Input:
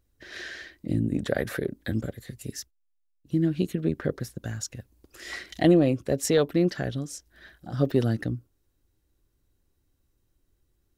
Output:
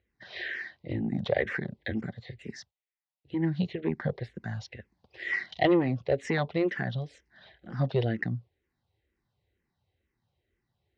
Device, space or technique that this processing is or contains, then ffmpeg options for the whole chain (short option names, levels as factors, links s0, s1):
barber-pole phaser into a guitar amplifier: -filter_complex "[0:a]asplit=2[s0][s1];[s1]afreqshift=-2.1[s2];[s0][s2]amix=inputs=2:normalize=1,asoftclip=type=tanh:threshold=0.158,highpass=97,equalizer=f=290:t=q:w=4:g=-10,equalizer=f=780:t=q:w=4:g=5,equalizer=f=1300:t=q:w=4:g=-6,equalizer=f=2000:t=q:w=4:g=8,lowpass=f=4200:w=0.5412,lowpass=f=4200:w=1.3066,volume=1.33"